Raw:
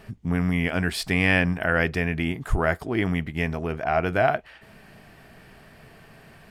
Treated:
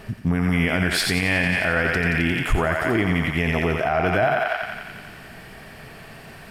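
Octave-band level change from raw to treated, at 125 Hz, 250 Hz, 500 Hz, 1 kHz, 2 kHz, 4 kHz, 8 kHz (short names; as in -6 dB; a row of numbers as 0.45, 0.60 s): +2.5, +2.5, +2.5, +3.0, +4.0, +6.5, +7.5 dB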